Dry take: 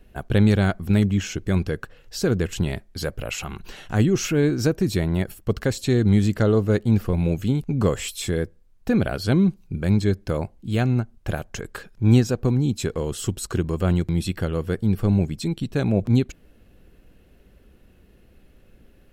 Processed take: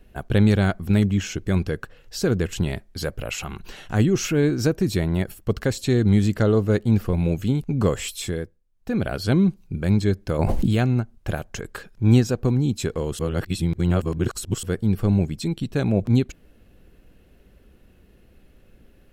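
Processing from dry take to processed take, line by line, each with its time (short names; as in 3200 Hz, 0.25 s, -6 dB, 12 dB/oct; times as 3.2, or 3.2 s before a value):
8.16–9.16 dip -13 dB, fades 0.44 s
10.39–10.85 fast leveller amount 100%
13.19–14.63 reverse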